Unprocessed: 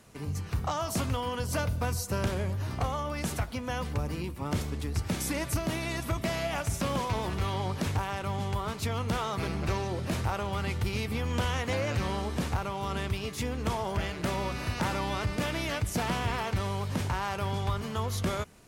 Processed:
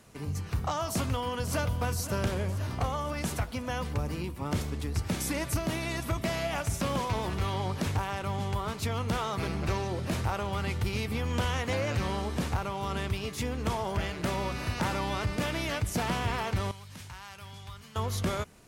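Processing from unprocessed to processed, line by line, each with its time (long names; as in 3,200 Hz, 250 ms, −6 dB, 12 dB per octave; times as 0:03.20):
0:00.92–0:01.63: delay throw 520 ms, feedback 65%, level −12 dB
0:16.71–0:17.96: guitar amp tone stack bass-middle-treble 5-5-5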